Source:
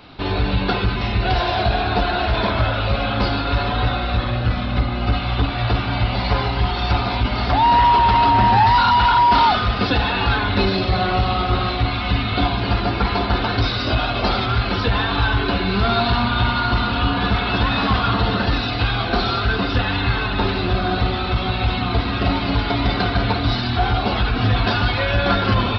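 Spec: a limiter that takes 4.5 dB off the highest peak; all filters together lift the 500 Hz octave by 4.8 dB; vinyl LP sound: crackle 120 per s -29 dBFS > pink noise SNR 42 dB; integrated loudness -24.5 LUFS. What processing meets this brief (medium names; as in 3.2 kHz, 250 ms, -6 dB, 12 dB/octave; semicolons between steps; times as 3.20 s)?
peaking EQ 500 Hz +6.5 dB; peak limiter -9.5 dBFS; crackle 120 per s -29 dBFS; pink noise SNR 42 dB; trim -5.5 dB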